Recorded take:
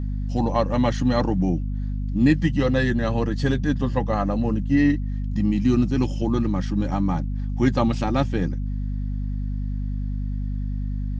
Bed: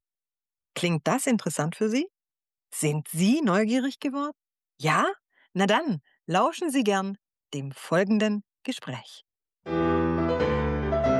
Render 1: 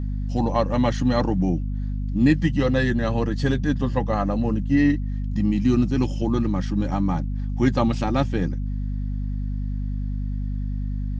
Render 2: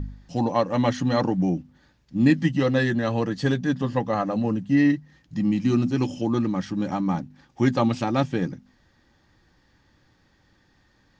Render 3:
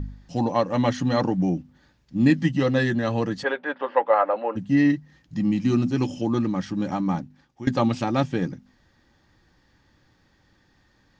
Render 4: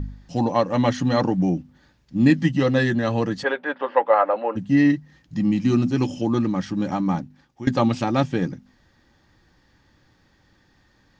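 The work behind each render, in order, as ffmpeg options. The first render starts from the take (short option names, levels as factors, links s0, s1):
-af anull
-af "bandreject=f=50:t=h:w=4,bandreject=f=100:t=h:w=4,bandreject=f=150:t=h:w=4,bandreject=f=200:t=h:w=4,bandreject=f=250:t=h:w=4"
-filter_complex "[0:a]asplit=3[s0][s1][s2];[s0]afade=t=out:st=3.42:d=0.02[s3];[s1]highpass=f=400:w=0.5412,highpass=f=400:w=1.3066,equalizer=f=560:t=q:w=4:g=8,equalizer=f=900:t=q:w=4:g=9,equalizer=f=1400:t=q:w=4:g=9,equalizer=f=2200:t=q:w=4:g=5,lowpass=f=3100:w=0.5412,lowpass=f=3100:w=1.3066,afade=t=in:st=3.42:d=0.02,afade=t=out:st=4.55:d=0.02[s4];[s2]afade=t=in:st=4.55:d=0.02[s5];[s3][s4][s5]amix=inputs=3:normalize=0,asplit=2[s6][s7];[s6]atrim=end=7.67,asetpts=PTS-STARTPTS,afade=t=out:st=7.14:d=0.53:silence=0.125893[s8];[s7]atrim=start=7.67,asetpts=PTS-STARTPTS,afade=t=in:d=0.004:c=hsin:silence=0.125893[s9];[s8][s9]concat=n=2:v=0:a=1"
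-af "volume=1.26"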